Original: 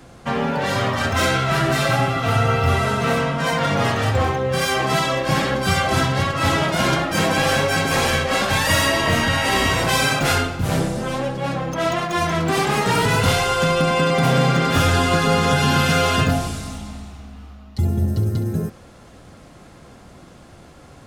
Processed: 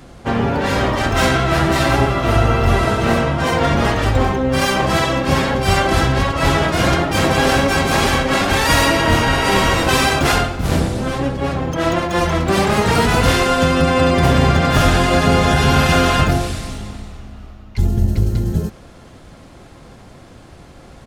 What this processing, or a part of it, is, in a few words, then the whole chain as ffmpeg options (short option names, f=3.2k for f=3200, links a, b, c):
octave pedal: -filter_complex "[0:a]asplit=2[a][b];[b]asetrate=22050,aresample=44100,atempo=2,volume=0dB[c];[a][c]amix=inputs=2:normalize=0,volume=1dB"